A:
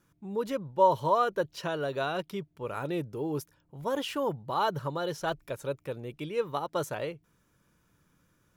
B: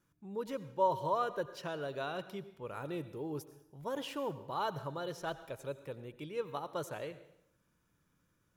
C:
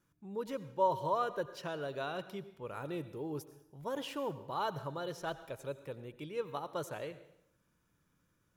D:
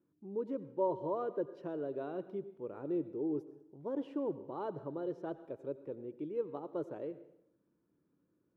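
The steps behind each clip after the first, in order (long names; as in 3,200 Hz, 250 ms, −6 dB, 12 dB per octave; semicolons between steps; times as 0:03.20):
dense smooth reverb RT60 0.75 s, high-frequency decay 0.95×, pre-delay 75 ms, DRR 13.5 dB; level −7.5 dB
no processing that can be heard
resonant band-pass 330 Hz, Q 2.2; level +7 dB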